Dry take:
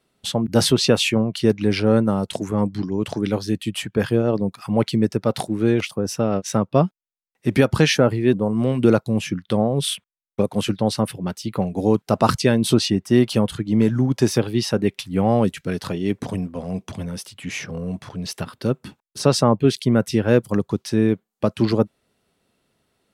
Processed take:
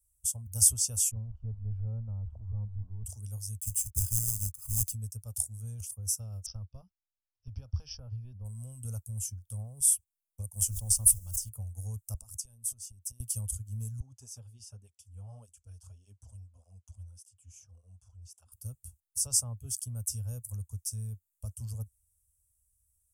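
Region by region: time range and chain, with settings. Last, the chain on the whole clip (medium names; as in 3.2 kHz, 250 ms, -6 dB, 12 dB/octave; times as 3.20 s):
1.11–3.05 s: jump at every zero crossing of -30 dBFS + Bessel low-pass 920 Hz, order 4
3.60–4.93 s: low-pass 9.2 kHz + companded quantiser 4-bit + comb 0.8 ms, depth 55%
6.46–8.45 s: compression 3:1, threshold -16 dBFS + careless resampling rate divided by 4×, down none, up filtered
10.55–11.48 s: added noise pink -55 dBFS + decay stretcher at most 91 dB/s
12.14–13.20 s: high-pass 110 Hz + band-stop 1.4 kHz, Q 28 + compression 20:1, threshold -29 dBFS
14.00–18.52 s: low-pass 4.2 kHz + bass shelf 220 Hz -10.5 dB + cancelling through-zero flanger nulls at 1.7 Hz, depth 7.7 ms
whole clip: inverse Chebyshev band-stop 150–4300 Hz, stop band 40 dB; dynamic bell 4.4 kHz, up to +7 dB, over -55 dBFS, Q 0.84; trim +5.5 dB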